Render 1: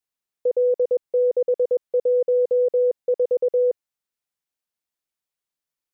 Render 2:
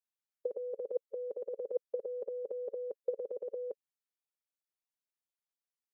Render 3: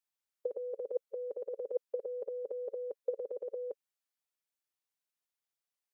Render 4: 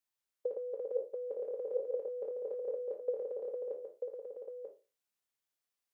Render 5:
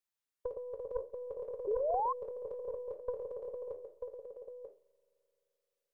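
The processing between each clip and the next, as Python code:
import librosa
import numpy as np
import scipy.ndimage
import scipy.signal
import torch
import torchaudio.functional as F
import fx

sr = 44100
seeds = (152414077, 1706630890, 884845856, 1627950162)

y1 = scipy.signal.sosfilt(scipy.signal.butter(2, 250.0, 'highpass', fs=sr, output='sos'), x)
y1 = fx.hpss(y1, sr, part='harmonic', gain_db=-14)
y1 = y1 * 10.0 ** (-6.5 / 20.0)
y2 = fx.low_shelf(y1, sr, hz=240.0, db=-10.5)
y2 = y2 * 10.0 ** (2.0 / 20.0)
y3 = fx.spec_trails(y2, sr, decay_s=0.31)
y3 = y3 + 10.0 ** (-5.5 / 20.0) * np.pad(y3, (int(940 * sr / 1000.0), 0))[:len(y3)]
y3 = y3 * 10.0 ** (-1.0 / 20.0)
y4 = fx.tracing_dist(y3, sr, depth_ms=0.16)
y4 = fx.rev_spring(y4, sr, rt60_s=3.2, pass_ms=(43,), chirp_ms=25, drr_db=20.0)
y4 = fx.spec_paint(y4, sr, seeds[0], shape='rise', start_s=1.67, length_s=0.46, low_hz=390.0, high_hz=1100.0, level_db=-29.0)
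y4 = y4 * 10.0 ** (-3.0 / 20.0)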